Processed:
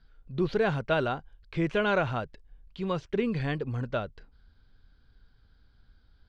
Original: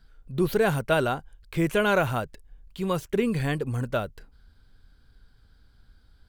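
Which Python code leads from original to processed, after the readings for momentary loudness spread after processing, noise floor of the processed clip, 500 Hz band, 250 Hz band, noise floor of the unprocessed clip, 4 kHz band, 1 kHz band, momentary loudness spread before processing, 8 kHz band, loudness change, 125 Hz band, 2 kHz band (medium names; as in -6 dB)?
11 LU, -63 dBFS, -3.5 dB, -3.5 dB, -59 dBFS, -3.5 dB, -3.5 dB, 12 LU, under -15 dB, -3.5 dB, -3.5 dB, -3.5 dB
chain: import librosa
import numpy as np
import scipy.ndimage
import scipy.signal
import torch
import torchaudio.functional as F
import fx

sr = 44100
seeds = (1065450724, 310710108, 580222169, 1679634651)

y = scipy.signal.sosfilt(scipy.signal.butter(4, 5100.0, 'lowpass', fs=sr, output='sos'), x)
y = F.gain(torch.from_numpy(y), -3.5).numpy()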